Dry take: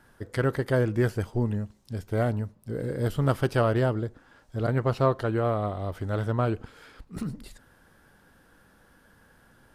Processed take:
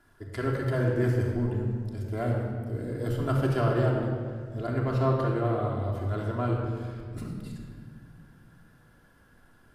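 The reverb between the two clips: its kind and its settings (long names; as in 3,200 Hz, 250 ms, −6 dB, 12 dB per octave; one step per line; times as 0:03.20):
rectangular room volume 3,300 cubic metres, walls mixed, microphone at 3.1 metres
level −7 dB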